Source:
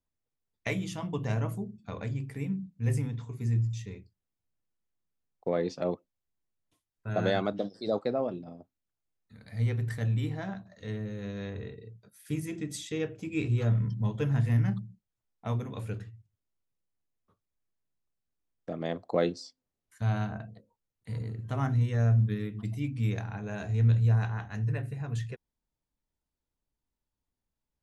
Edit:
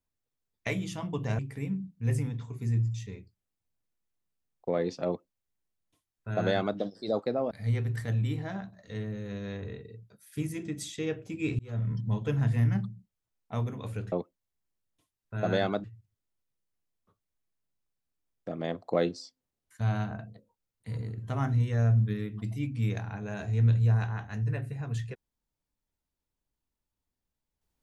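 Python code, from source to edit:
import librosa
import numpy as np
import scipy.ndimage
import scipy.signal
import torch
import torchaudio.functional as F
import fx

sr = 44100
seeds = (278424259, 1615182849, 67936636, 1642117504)

y = fx.edit(x, sr, fx.cut(start_s=1.39, length_s=0.79),
    fx.duplicate(start_s=5.85, length_s=1.72, to_s=16.05),
    fx.cut(start_s=8.3, length_s=1.14),
    fx.fade_in_span(start_s=13.52, length_s=0.38), tone=tone)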